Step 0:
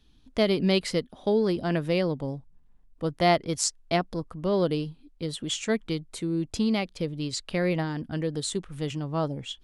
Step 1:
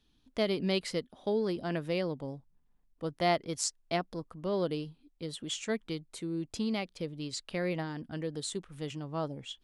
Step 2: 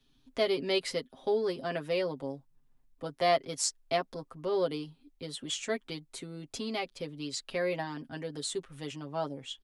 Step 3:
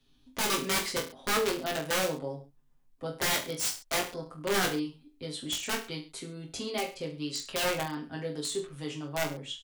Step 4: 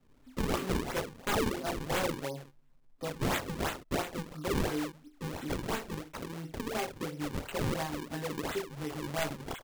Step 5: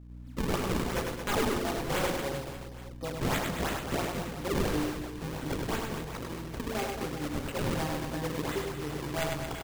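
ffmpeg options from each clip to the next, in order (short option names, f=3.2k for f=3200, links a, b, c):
-af "lowshelf=f=120:g=-7,volume=-6dB"
-filter_complex "[0:a]aecho=1:1:7.5:0.78,acrossover=split=230|1000[a][b][c];[a]acompressor=threshold=-50dB:ratio=6[d];[d][b][c]amix=inputs=3:normalize=0"
-filter_complex "[0:a]aeval=exprs='(mod(16.8*val(0)+1,2)-1)/16.8':c=same,asplit=2[a][b];[b]aecho=0:1:20|43|69.45|99.87|134.8:0.631|0.398|0.251|0.158|0.1[c];[a][c]amix=inputs=2:normalize=0"
-filter_complex "[0:a]asplit=2[a][b];[b]acompressor=threshold=-40dB:ratio=6,volume=2dB[c];[a][c]amix=inputs=2:normalize=0,acrusher=samples=38:mix=1:aa=0.000001:lfo=1:lforange=60.8:lforate=2.9,volume=-4.5dB"
-filter_complex "[0:a]aeval=exprs='val(0)+0.00447*(sin(2*PI*60*n/s)+sin(2*PI*2*60*n/s)/2+sin(2*PI*3*60*n/s)/3+sin(2*PI*4*60*n/s)/4+sin(2*PI*5*60*n/s)/5)':c=same,asplit=2[a][b];[b]aecho=0:1:100|225|381.2|576.6|820.7:0.631|0.398|0.251|0.158|0.1[c];[a][c]amix=inputs=2:normalize=0"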